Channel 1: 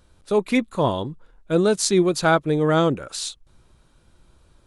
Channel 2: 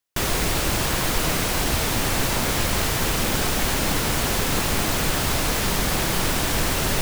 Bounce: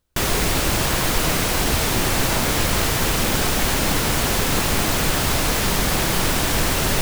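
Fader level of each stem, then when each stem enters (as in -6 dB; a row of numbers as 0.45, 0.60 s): -17.0, +2.5 dB; 0.00, 0.00 s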